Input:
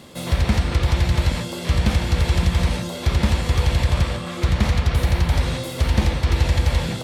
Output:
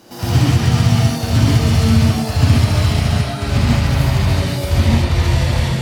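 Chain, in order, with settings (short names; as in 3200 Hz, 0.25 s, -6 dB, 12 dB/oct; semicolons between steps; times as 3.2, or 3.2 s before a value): speed glide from 142% -> 100%; non-linear reverb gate 0.16 s rising, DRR -7.5 dB; gain -4 dB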